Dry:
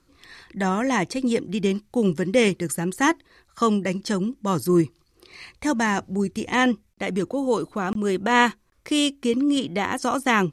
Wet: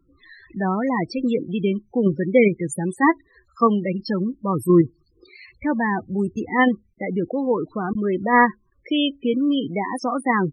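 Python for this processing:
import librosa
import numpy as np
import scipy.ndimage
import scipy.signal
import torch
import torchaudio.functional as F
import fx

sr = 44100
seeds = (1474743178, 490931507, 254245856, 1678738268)

p1 = fx.level_steps(x, sr, step_db=18)
p2 = x + (p1 * 10.0 ** (-2.5 / 20.0))
y = fx.spec_topn(p2, sr, count=16)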